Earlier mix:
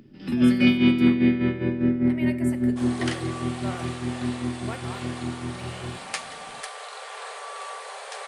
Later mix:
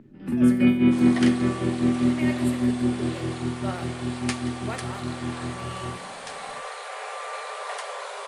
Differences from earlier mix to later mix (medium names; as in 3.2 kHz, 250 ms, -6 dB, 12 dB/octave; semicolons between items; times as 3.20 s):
speech: send +6.5 dB; first sound: add low-pass 1.7 kHz 12 dB/octave; second sound: entry -1.85 s